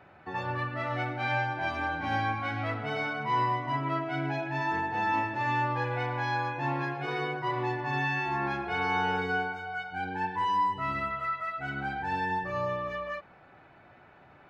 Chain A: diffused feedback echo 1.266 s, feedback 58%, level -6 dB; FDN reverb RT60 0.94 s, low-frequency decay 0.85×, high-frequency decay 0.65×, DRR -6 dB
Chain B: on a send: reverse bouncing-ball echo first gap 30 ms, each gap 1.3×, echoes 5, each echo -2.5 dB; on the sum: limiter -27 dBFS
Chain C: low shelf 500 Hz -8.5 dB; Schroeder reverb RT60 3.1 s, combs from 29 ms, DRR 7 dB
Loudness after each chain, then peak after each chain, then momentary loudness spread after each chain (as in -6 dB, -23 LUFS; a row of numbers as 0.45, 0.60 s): -21.0, -34.5, -32.0 LUFS; -6.5, -27.0, -19.0 dBFS; 6, 2, 6 LU